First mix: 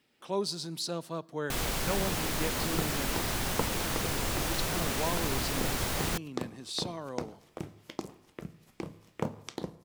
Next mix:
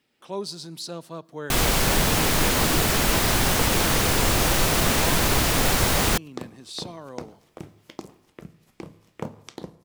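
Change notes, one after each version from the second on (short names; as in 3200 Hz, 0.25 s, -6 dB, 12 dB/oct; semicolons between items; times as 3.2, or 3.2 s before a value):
first sound +11.0 dB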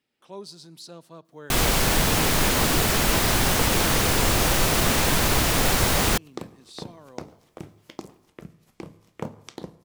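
speech -8.0 dB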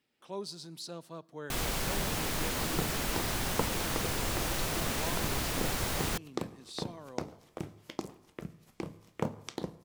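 first sound -12.0 dB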